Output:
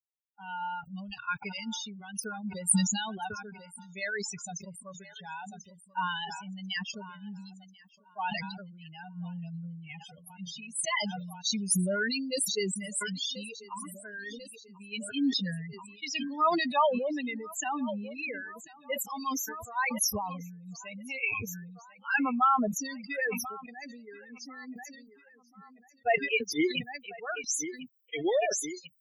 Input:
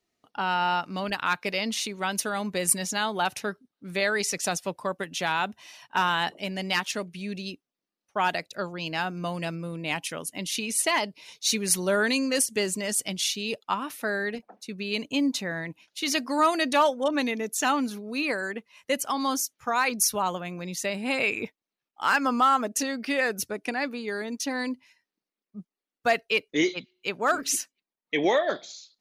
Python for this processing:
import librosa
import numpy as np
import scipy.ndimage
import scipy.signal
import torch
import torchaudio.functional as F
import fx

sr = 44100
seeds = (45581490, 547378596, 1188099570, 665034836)

p1 = fx.bin_expand(x, sr, power=3.0)
p2 = fx.high_shelf(p1, sr, hz=5600.0, db=3.0)
p3 = p2 + fx.echo_feedback(p2, sr, ms=1041, feedback_pct=49, wet_db=-24.0, dry=0)
p4 = fx.spec_topn(p3, sr, count=32)
y = fx.sustainer(p4, sr, db_per_s=40.0)